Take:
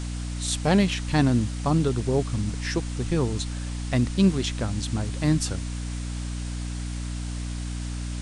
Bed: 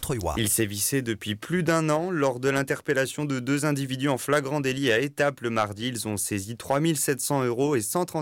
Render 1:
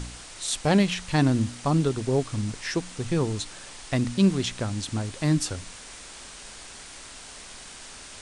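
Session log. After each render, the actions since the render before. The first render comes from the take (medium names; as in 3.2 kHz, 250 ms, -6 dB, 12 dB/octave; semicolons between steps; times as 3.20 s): de-hum 60 Hz, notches 5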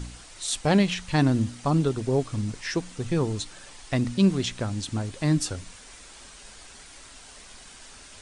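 noise reduction 6 dB, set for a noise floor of -44 dBFS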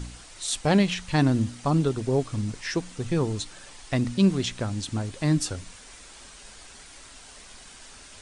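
no audible change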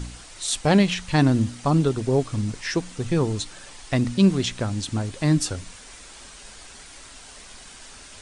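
trim +3 dB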